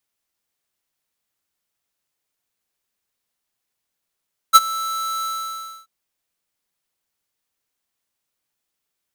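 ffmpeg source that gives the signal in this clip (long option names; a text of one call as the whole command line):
ffmpeg -f lavfi -i "aevalsrc='0.531*(2*lt(mod(1320*t,1),0.5)-1)':duration=1.334:sample_rate=44100,afade=type=in:duration=0.028,afade=type=out:start_time=0.028:duration=0.034:silence=0.106,afade=type=out:start_time=0.71:duration=0.624" out.wav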